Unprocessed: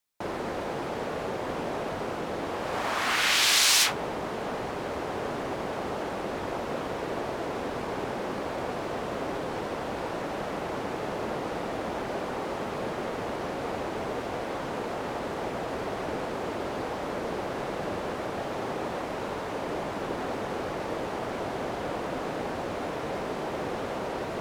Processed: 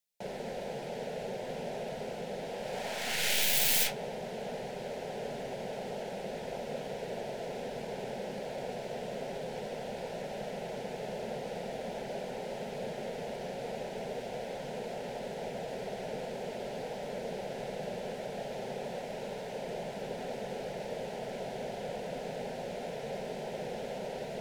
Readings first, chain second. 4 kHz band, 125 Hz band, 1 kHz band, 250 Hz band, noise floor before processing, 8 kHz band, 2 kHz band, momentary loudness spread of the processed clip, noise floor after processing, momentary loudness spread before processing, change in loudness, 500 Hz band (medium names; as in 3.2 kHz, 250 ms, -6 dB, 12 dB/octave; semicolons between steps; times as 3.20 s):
-8.5 dB, -6.0 dB, -9.5 dB, -8.5 dB, -34 dBFS, -6.5 dB, -9.0 dB, 3 LU, -41 dBFS, 4 LU, -6.5 dB, -4.5 dB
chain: tracing distortion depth 0.28 ms; static phaser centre 310 Hz, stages 6; trim -3.5 dB